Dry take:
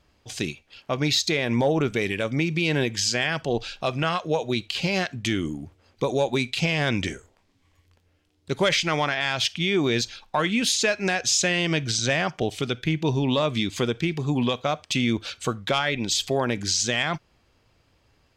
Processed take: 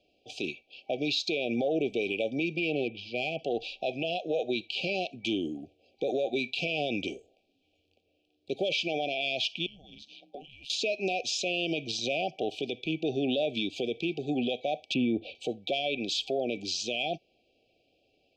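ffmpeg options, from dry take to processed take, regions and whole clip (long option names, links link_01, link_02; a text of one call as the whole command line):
ffmpeg -i in.wav -filter_complex "[0:a]asettb=1/sr,asplit=3[link_01][link_02][link_03];[link_01]atrim=end=2.564[link_04];[link_02]atrim=start=2.56:end=3.39,asetpts=PTS-STARTPTS,afade=type=in:duration=0.004:curve=qsin,afade=type=out:start_time=0.826:duration=0.004:curve=qsin,lowpass=frequency=2900:width=0.5412,lowpass=frequency=2900:width=1.3066,asubboost=boost=6.5:cutoff=150,aeval=exprs='clip(val(0),-1,0.0944)':channel_layout=same[link_05];[link_03]atrim=start=3.386[link_06];[link_04][link_05]acrossfade=duration=0.004:curve1=hsin:curve2=qsin[link_07];[link_07][link_06]acrossfade=duration=0.004:curve1=qsin:curve2=hsin,asettb=1/sr,asplit=3[link_08][link_09][link_10];[link_08]atrim=end=9.664[link_11];[link_09]atrim=start=9.66:end=10.7,asetpts=PTS-STARTPTS,afade=type=in:duration=0.004:curve=qsin,afade=type=out:start_time=1.036:duration=0.004:curve=qsin,acompressor=threshold=-38dB:ratio=4:attack=3.2:release=140:knee=1:detection=peak,afreqshift=-260,aeval=exprs='val(0)*sin(2*PI*69*n/s)':channel_layout=same[link_12];[link_10]atrim=start=10.696[link_13];[link_11][link_12]acrossfade=duration=0.004:curve1=hsin:curve2=qsin[link_14];[link_14][link_13]acrossfade=duration=0.004:curve1=qsin:curve2=hsin,asettb=1/sr,asplit=3[link_15][link_16][link_17];[link_15]atrim=end=14.944[link_18];[link_16]atrim=start=14.94:end=15.35,asetpts=PTS-STARTPTS,afade=type=in:duration=0.004:curve=qsin,afade=type=out:start_time=0.406:duration=0.004:curve=qsin,lowpass=2200,lowshelf=frequency=450:gain=8.5[link_19];[link_17]atrim=start=15.346[link_20];[link_18][link_19]acrossfade=duration=0.004:curve1=hsin:curve2=qsin[link_21];[link_21][link_20]acrossfade=duration=0.004:curve1=qsin:curve2=hsin,afftfilt=real='re*(1-between(b*sr/4096,790,2300))':imag='im*(1-between(b*sr/4096,790,2300))':win_size=4096:overlap=0.75,acrossover=split=260 4200:gain=0.1 1 0.0708[link_22][link_23][link_24];[link_22][link_23][link_24]amix=inputs=3:normalize=0,alimiter=limit=-20.5dB:level=0:latency=1:release=30" out.wav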